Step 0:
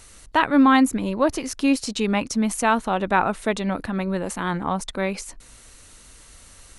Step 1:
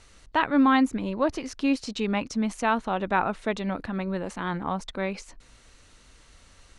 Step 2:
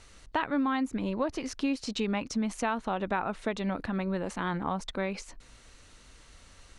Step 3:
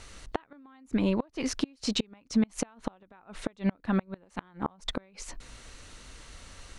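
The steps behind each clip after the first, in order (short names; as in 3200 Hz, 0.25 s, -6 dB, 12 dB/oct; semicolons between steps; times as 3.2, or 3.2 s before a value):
LPF 5400 Hz 12 dB/oct; gain -4.5 dB
compressor 5:1, threshold -26 dBFS, peak gain reduction 9.5 dB
flipped gate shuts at -21 dBFS, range -32 dB; gain +6 dB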